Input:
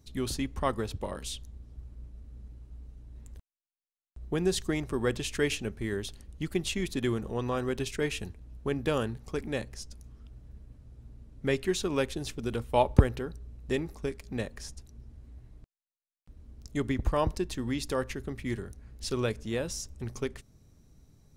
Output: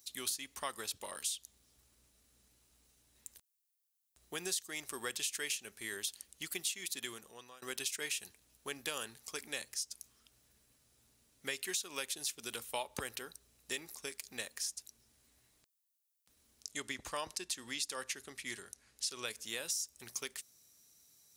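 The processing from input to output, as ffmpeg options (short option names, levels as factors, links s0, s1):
-filter_complex "[0:a]asettb=1/sr,asplit=3[s0][s1][s2];[s0]atrim=end=16.614[s3];[s1]atrim=start=16.61:end=19.27,asetpts=PTS-STARTPTS,afade=t=in:d=0.004:c=qsin,afade=t=out:st=2.656:d=0.004:c=qsin,lowpass=9800[s4];[s2]atrim=start=19.266[s5];[s3][s4]acrossfade=d=0.004:c1=hsin:c2=qsin[s6];[s6][s5]acrossfade=d=0.004:c1=qsin:c2=hsin,asplit=2[s7][s8];[s7]atrim=end=7.62,asetpts=PTS-STARTPTS,afade=t=out:st=6.79:d=0.83:silence=0.0630957[s9];[s8]atrim=start=7.62,asetpts=PTS-STARTPTS,afade=t=in:d=0.004:c=hsin:silence=0.0630957[s10];[s9][s10]concat=n=2:v=0:a=1,aderivative,acompressor=threshold=0.00562:ratio=6,volume=3.35"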